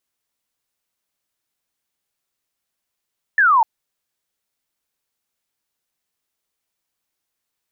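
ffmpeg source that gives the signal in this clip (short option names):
-f lavfi -i "aevalsrc='0.299*clip(t/0.002,0,1)*clip((0.25-t)/0.002,0,1)*sin(2*PI*1800*0.25/log(860/1800)*(exp(log(860/1800)*t/0.25)-1))':d=0.25:s=44100"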